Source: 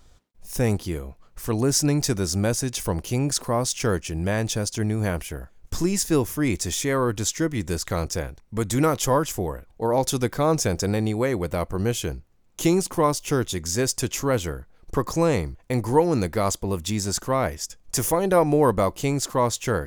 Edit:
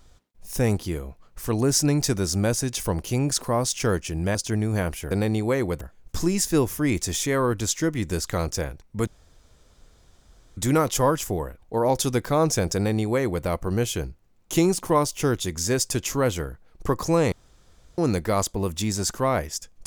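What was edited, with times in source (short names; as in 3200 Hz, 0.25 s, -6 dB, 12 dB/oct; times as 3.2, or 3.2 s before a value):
4.35–4.63 cut
8.65 insert room tone 1.50 s
10.83–11.53 copy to 5.39
15.4–16.06 room tone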